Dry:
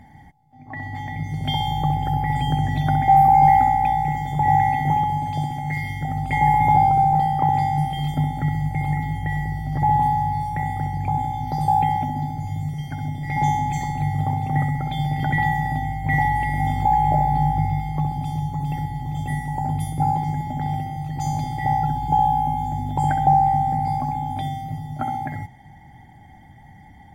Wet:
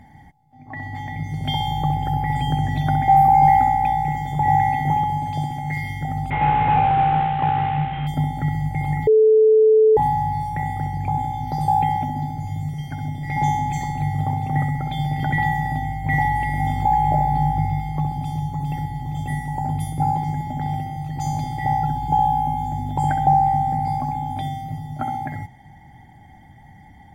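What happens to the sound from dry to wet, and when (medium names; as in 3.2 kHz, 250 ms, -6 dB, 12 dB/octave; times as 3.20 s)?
6.30–8.07 s: CVSD coder 16 kbps
9.07–9.97 s: bleep 436 Hz -10 dBFS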